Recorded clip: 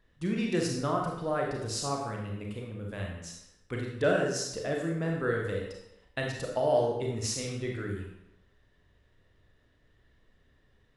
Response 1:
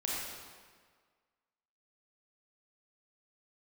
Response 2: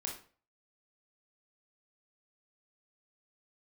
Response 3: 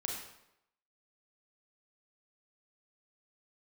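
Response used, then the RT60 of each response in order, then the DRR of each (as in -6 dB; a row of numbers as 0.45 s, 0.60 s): 3; 1.7 s, 0.40 s, 0.85 s; -5.5 dB, -0.5 dB, -0.5 dB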